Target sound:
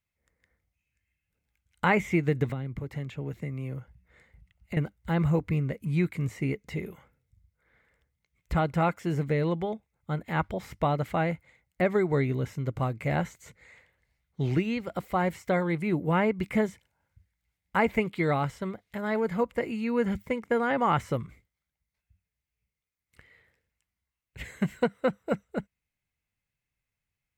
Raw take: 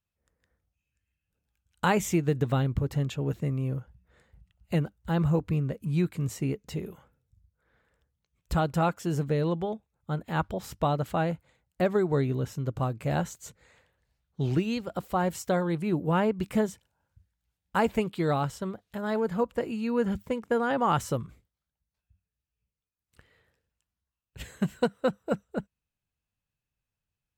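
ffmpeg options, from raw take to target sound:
ffmpeg -i in.wav -filter_complex "[0:a]acrossover=split=3000[link_01][link_02];[link_02]acompressor=threshold=-50dB:ratio=4:attack=1:release=60[link_03];[link_01][link_03]amix=inputs=2:normalize=0,equalizer=frequency=2100:width=5.2:gain=14,asettb=1/sr,asplit=3[link_04][link_05][link_06];[link_04]atrim=end=2.494[link_07];[link_05]atrim=start=2.49:end=4.77,asetpts=PTS-STARTPTS,afade=type=in:duration=0.004:curve=qsin,afade=type=out:start_time=2.276:duration=0.004:curve=qsin,acrossover=split=110|440[link_08][link_09][link_10];[link_08]acompressor=threshold=-44dB:ratio=4[link_11];[link_09]acompressor=threshold=-35dB:ratio=4[link_12];[link_10]acompressor=threshold=-44dB:ratio=4[link_13];[link_11][link_12][link_13]amix=inputs=3:normalize=0[link_14];[link_06]atrim=start=4.766[link_15];[link_07][link_14]acrossfade=duration=0.004:curve1=hsin:curve2=qsin[link_16];[link_16][link_15]acrossfade=duration=0.004:curve1=qsin:curve2=hsin" out.wav

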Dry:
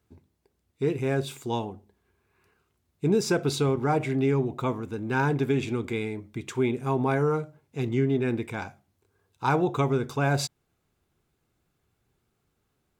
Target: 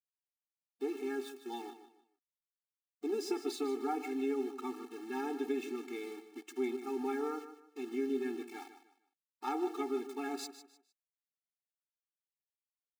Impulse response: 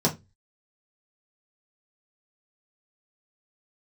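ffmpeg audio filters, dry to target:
-filter_complex "[0:a]aeval=exprs='val(0)*gte(abs(val(0)),0.015)':channel_layout=same,aeval=exprs='0.251*(cos(1*acos(clip(val(0)/0.251,-1,1)))-cos(1*PI/2))+0.0158*(cos(4*acos(clip(val(0)/0.251,-1,1)))-cos(4*PI/2))':channel_layout=same,asplit=2[link_01][link_02];[link_02]aecho=0:1:152|304|456:0.251|0.0728|0.0211[link_03];[link_01][link_03]amix=inputs=2:normalize=0,afftfilt=real='re*eq(mod(floor(b*sr/1024/230),2),1)':imag='im*eq(mod(floor(b*sr/1024/230),2),1)':win_size=1024:overlap=0.75,volume=-8.5dB"

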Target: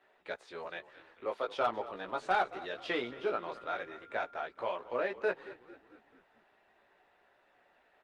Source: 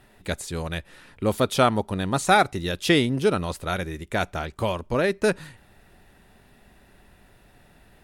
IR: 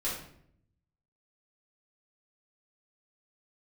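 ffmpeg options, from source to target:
-filter_complex "[0:a]asplit=2[link_01][link_02];[link_02]highpass=frequency=720:poles=1,volume=14dB,asoftclip=type=tanh:threshold=-5.5dB[link_03];[link_01][link_03]amix=inputs=2:normalize=0,lowpass=frequency=1300:poles=1,volume=-6dB,equalizer=frequency=210:width=1:gain=-4,asettb=1/sr,asplit=3[link_04][link_05][link_06];[link_04]atrim=end=0.644[link_07];[link_05]atrim=start=0.64:end=1.51,asetpts=PTS-STARTPTS,afade=type=in:duration=0.004:curve=qsin,afade=type=out:start_time=0.866:duration=0.004:curve=qsin,acrossover=split=350|3000[link_08][link_09][link_10];[link_08]acompressor=threshold=-36dB:ratio=6[link_11];[link_11][link_09][link_10]amix=inputs=3:normalize=0[link_12];[link_06]atrim=start=1.506[link_13];[link_07][link_12]acrossfade=duration=0.004:curve1=hsin:curve2=qsin[link_14];[link_14][link_13]acrossfade=duration=0.004:curve1=qsin:curve2=hsin,acrossover=split=270 5600:gain=0.112 1 0.0794[link_15][link_16][link_17];[link_15][link_16][link_17]amix=inputs=3:normalize=0,flanger=delay=16:depth=2:speed=0.38,volume=12dB,asoftclip=hard,volume=-12dB,asettb=1/sr,asplit=3[link_18][link_19][link_20];[link_18]atrim=end=3.054[link_21];[link_19]atrim=start=3.05:end=4.35,asetpts=PTS-STARTPTS,afade=type=in:duration=0.004:curve=qsin,afade=type=out:start_time=1.296:duration=0.004:curve=qsin,aeval=exprs='val(0)+0.00562*sin(2*PI*1400*n/s)':channel_layout=same[link_22];[link_20]atrim=start=4.346[link_23];[link_21][link_22]acrossfade=duration=0.004:curve1=hsin:curve2=qsin[link_24];[link_24][link_23]acrossfade=duration=0.004:curve1=qsin:curve2=hsin,asplit=6[link_25][link_26][link_27][link_28][link_29][link_30];[link_26]adelay=222,afreqshift=-41,volume=-16.5dB[link_31];[link_27]adelay=444,afreqshift=-82,volume=-22.2dB[link_32];[link_28]adelay=666,afreqshift=-123,volume=-27.9dB[link_33];[link_29]adelay=888,afreqshift=-164,volume=-33.5dB[link_34];[link_30]adelay=1110,afreqshift=-205,volume=-39.2dB[link_35];[link_25][link_31][link_32][link_33][link_34][link_35]amix=inputs=6:normalize=0,volume=-8.5dB" -ar 48000 -c:a libopus -b:a 24k

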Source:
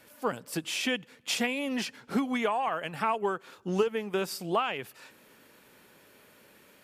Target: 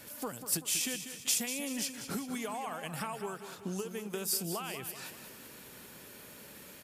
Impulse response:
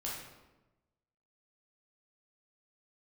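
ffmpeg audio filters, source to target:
-filter_complex "[0:a]bass=frequency=250:gain=6,treble=frequency=4000:gain=8,acrossover=split=6900[link_01][link_02];[link_01]acompressor=threshold=-40dB:ratio=6[link_03];[link_03][link_02]amix=inputs=2:normalize=0,aecho=1:1:192|384|576|768|960|1152:0.316|0.161|0.0823|0.0419|0.0214|0.0109,volume=3dB"

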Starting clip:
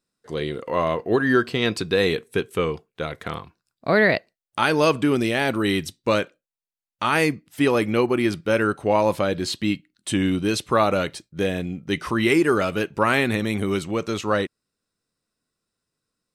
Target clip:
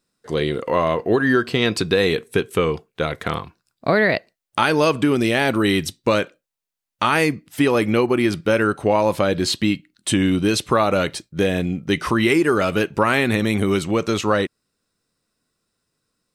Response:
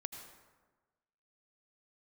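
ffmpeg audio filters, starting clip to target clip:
-af "acompressor=threshold=-22dB:ratio=2.5,volume=6.5dB"

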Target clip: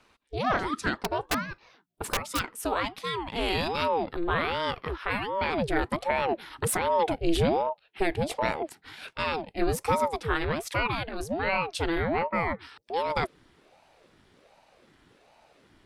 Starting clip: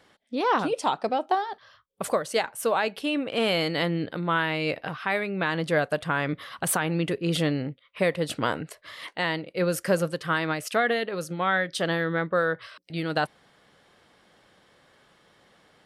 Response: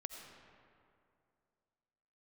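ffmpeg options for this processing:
-filter_complex "[0:a]asubboost=boost=8.5:cutoff=120,asplit=3[link_01][link_02][link_03];[link_01]afade=type=out:start_time=0.94:duration=0.02[link_04];[link_02]aeval=exprs='(mod(7.5*val(0)+1,2)-1)/7.5':channel_layout=same,afade=type=in:start_time=0.94:duration=0.02,afade=type=out:start_time=2.38:duration=0.02[link_05];[link_03]afade=type=in:start_time=2.38:duration=0.02[link_06];[link_04][link_05][link_06]amix=inputs=3:normalize=0,aeval=exprs='val(0)*sin(2*PI*470*n/s+470*0.65/1.3*sin(2*PI*1.3*n/s))':channel_layout=same"

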